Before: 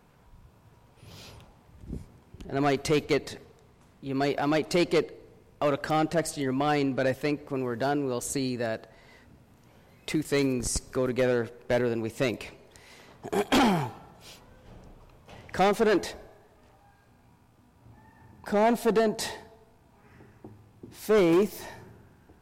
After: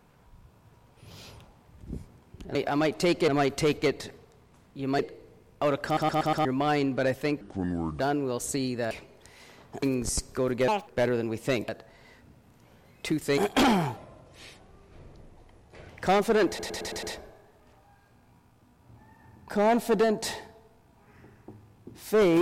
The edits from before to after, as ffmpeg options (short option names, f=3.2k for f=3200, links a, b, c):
-filter_complex "[0:a]asplit=24[a][b][c][d][e][f][g][h][i][j][k][l][m][n][o][p][q][r][s][t][u][v][w][x];[a]atrim=end=2.552[y];[b]atrim=start=4.258:end=4.992[z];[c]atrim=start=2.548:end=4.262[aa];[d]atrim=start=4.988:end=5.972[ab];[e]atrim=start=5.848:end=5.972[ac];[f]atrim=start=5.848:end=5.972[ad];[g]atrim=start=5.848:end=5.972[ae];[h]atrim=start=5.848:end=5.972[af];[i]atrim=start=6.448:end=7.414[ag];[j]atrim=start=7.41:end=7.81,asetpts=PTS-STARTPTS,asetrate=29988,aresample=44100,atrim=end_sample=25941,asetpts=PTS-STARTPTS[ah];[k]atrim=start=7.806:end=8.722[ai];[l]atrim=start=12.408:end=13.332[aj];[m]atrim=start=10.408:end=11.264[ak];[n]atrim=start=11.26:end=11.6,asetpts=PTS-STARTPTS,asetrate=76293,aresample=44100,atrim=end_sample=8667,asetpts=PTS-STARTPTS[al];[o]atrim=start=11.596:end=12.412[am];[p]atrim=start=8.718:end=10.412[an];[q]atrim=start=13.328:end=13.924[ao];[r]atrim=start=13.92:end=15.4,asetpts=PTS-STARTPTS,asetrate=33957,aresample=44100[ap];[s]atrim=start=15.396:end=16.102[aq];[t]atrim=start=15.988:end=16.102[ar];[u]atrim=start=15.988:end=16.102[as];[v]atrim=start=15.988:end=16.102[at];[w]atrim=start=15.988:end=16.102[au];[x]atrim=start=15.988[av];[y][z]acrossfade=d=0.004:c1=hsin:c2=hsin[aw];[aw][aa]acrossfade=d=0.004:c1=hsin:c2=hsin[ax];[ax][ab]acrossfade=d=0.004:c1=hsin:c2=hsin[ay];[ay][ac]acrossfade=d=0.004:c1=hsin:c2=hsin[az];[az][ad]acrossfade=d=0.004:c1=hsin:c2=hsin[ba];[ba][ae]acrossfade=d=0.004:c1=hsin:c2=hsin[bb];[bb][af]acrossfade=d=0.004:c1=hsin:c2=hsin[bc];[bc][ag]acrossfade=d=0.004:c1=hsin:c2=hsin[bd];[bd][ah]acrossfade=d=0.004:c1=hsin:c2=hsin[be];[be][ai]acrossfade=d=0.004:c1=hsin:c2=hsin[bf];[bf][aj]acrossfade=d=0.004:c1=hsin:c2=hsin[bg];[bg][ak]acrossfade=d=0.004:c1=hsin:c2=hsin[bh];[bh][al]acrossfade=d=0.004:c1=hsin:c2=hsin[bi];[bi][am]acrossfade=d=0.004:c1=hsin:c2=hsin[bj];[bj][an]acrossfade=d=0.004:c1=hsin:c2=hsin[bk];[bk][ao]acrossfade=d=0.004:c1=hsin:c2=hsin[bl];[bl][ap]acrossfade=d=0.004:c1=hsin:c2=hsin[bm];[bm][aq]acrossfade=d=0.004:c1=hsin:c2=hsin[bn];[bn][ar]acrossfade=d=0.004:c1=hsin:c2=hsin[bo];[bo][as]acrossfade=d=0.004:c1=hsin:c2=hsin[bp];[bp][at]acrossfade=d=0.004:c1=hsin:c2=hsin[bq];[bq][au]acrossfade=d=0.004:c1=hsin:c2=hsin[br];[br][av]acrossfade=d=0.004:c1=hsin:c2=hsin"